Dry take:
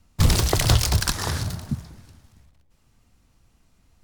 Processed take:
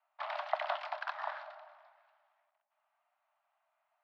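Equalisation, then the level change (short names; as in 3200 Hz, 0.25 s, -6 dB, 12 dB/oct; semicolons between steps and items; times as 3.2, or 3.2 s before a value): Chebyshev high-pass 590 Hz, order 10; air absorption 430 m; tape spacing loss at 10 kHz 31 dB; 0.0 dB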